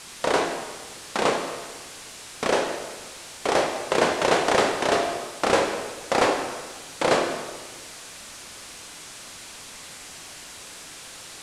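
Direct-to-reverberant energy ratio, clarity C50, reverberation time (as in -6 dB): 3.0 dB, 5.5 dB, 1.4 s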